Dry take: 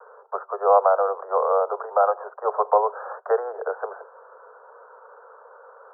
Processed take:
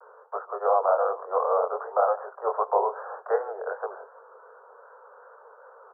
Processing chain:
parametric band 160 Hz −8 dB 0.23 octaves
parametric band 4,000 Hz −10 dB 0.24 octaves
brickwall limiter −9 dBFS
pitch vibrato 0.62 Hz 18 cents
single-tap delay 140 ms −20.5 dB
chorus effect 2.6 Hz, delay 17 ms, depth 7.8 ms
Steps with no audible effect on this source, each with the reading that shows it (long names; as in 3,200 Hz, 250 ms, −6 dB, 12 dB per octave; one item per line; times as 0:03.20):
parametric band 160 Hz: nothing at its input below 360 Hz
parametric band 4,000 Hz: nothing at its input above 1,700 Hz